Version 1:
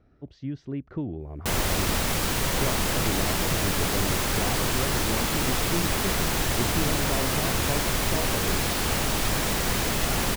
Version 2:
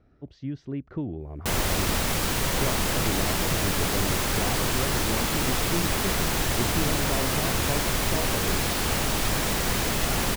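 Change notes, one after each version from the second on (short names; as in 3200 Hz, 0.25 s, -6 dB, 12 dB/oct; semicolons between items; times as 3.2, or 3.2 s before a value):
none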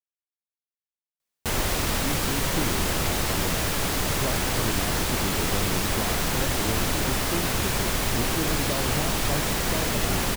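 speech: entry +1.60 s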